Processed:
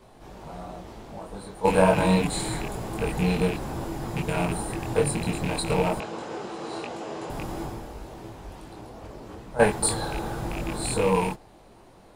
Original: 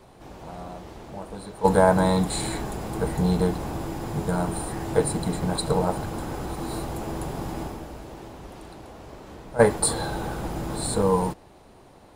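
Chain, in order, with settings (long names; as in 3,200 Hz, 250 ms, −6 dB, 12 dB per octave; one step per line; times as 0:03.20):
loose part that buzzes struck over −26 dBFS, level −20 dBFS
multi-voice chorus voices 6, 0.92 Hz, delay 22 ms, depth 4.9 ms
0:06.00–0:07.30: loudspeaker in its box 240–7,300 Hz, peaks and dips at 260 Hz −5 dB, 470 Hz +4 dB, 2,800 Hz +4 dB
level +2 dB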